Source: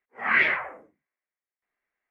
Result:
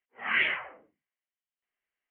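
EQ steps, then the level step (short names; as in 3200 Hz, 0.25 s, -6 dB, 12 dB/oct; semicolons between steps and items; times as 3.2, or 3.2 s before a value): synth low-pass 3000 Hz, resonance Q 9.5; air absorption 350 m; -7.0 dB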